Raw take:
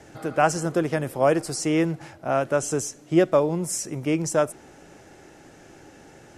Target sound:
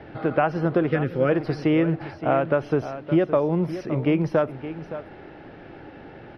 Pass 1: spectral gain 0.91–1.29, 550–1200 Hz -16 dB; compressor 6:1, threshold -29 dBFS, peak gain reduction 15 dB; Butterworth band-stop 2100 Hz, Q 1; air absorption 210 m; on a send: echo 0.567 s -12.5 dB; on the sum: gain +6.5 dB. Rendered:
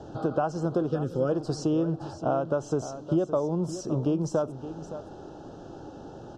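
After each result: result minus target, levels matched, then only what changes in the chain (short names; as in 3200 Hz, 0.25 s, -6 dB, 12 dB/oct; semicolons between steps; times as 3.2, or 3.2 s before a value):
8000 Hz band +19.0 dB; compressor: peak gain reduction +5.5 dB
change: Butterworth band-stop 7400 Hz, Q 1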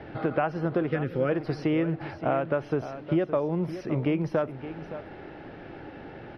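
compressor: peak gain reduction +5.5 dB
change: compressor 6:1, threshold -22.5 dBFS, peak gain reduction 9.5 dB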